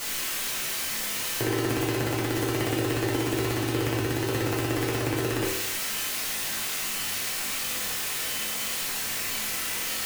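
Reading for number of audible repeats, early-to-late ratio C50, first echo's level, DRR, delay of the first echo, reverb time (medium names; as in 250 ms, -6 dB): no echo, 2.5 dB, no echo, -6.5 dB, no echo, 0.80 s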